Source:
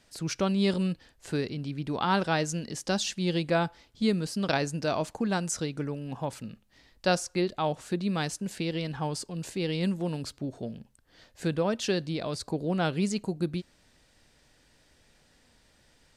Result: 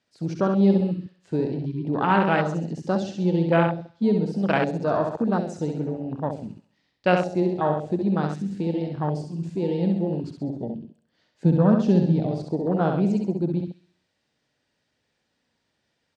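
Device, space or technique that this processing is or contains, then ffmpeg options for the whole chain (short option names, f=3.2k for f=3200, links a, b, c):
over-cleaned archive recording: -filter_complex "[0:a]asettb=1/sr,asplit=3[a][b][c];[a]atrim=end=11.454[d];[b]atrim=start=11.45:end=12.31,asetpts=PTS-STARTPTS,afade=t=in:d=0.004:c=qsin,afade=t=out:st=0.856:d=0.004:c=qsin,lowshelf=f=290:t=q:w=1.5:g=7[e];[c]atrim=start=12.306[f];[d][e]acrossfade=d=0.004:c1=hsin:c2=qsin[g];[g][f]acrossfade=d=0.004:c1=qsin:c2=hsin,highpass=110,lowpass=5.8k,aecho=1:1:66|132|198|264|330|396|462:0.596|0.316|0.167|0.0887|0.047|0.0249|0.0132,afwtdn=0.0355,volume=5dB"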